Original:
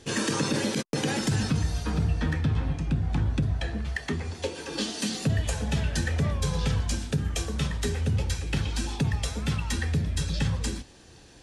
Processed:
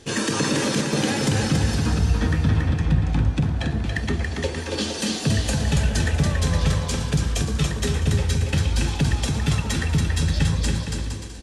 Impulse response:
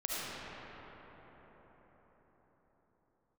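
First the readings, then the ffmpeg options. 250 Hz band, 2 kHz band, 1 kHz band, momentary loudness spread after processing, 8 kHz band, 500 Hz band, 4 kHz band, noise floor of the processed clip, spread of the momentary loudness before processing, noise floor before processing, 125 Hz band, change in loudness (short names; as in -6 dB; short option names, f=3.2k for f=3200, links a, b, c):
+5.5 dB, +5.5 dB, +6.0 dB, 4 LU, +5.5 dB, +5.5 dB, +5.5 dB, -30 dBFS, 5 LU, -51 dBFS, +6.0 dB, +5.5 dB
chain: -af "aecho=1:1:280|462|580.3|657.2|707.2:0.631|0.398|0.251|0.158|0.1,volume=3.5dB"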